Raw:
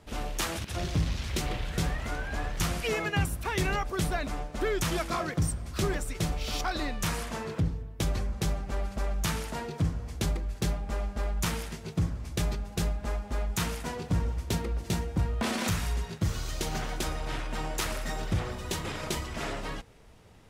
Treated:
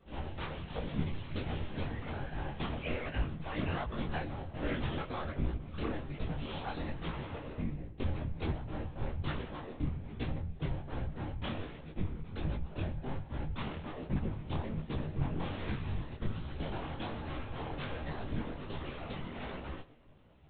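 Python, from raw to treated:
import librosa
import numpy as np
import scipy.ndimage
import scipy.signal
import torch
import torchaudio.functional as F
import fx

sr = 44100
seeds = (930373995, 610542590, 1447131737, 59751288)

p1 = fx.sample_hold(x, sr, seeds[0], rate_hz=2300.0, jitter_pct=0)
p2 = x + (p1 * librosa.db_to_amplitude(-4.0))
p3 = fx.lpc_monotone(p2, sr, seeds[1], pitch_hz=270.0, order=10)
p4 = fx.whisperise(p3, sr, seeds[2])
p5 = fx.doubler(p4, sr, ms=13.0, db=-12.0)
p6 = p5 + fx.echo_single(p5, sr, ms=121, db=-20.5, dry=0)
p7 = fx.detune_double(p6, sr, cents=44)
y = p7 * librosa.db_to_amplitude(-6.0)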